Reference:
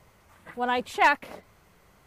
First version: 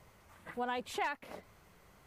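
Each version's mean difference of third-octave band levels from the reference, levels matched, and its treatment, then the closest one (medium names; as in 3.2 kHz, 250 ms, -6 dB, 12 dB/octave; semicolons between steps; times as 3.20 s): 5.5 dB: compression 5:1, threshold -31 dBFS, peak gain reduction 14.5 dB; trim -3 dB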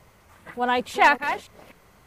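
2.0 dB: chunks repeated in reverse 294 ms, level -10 dB; trim +3.5 dB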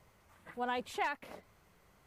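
4.0 dB: compression 10:1, threshold -24 dBFS, peak gain reduction 10 dB; trim -7 dB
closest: second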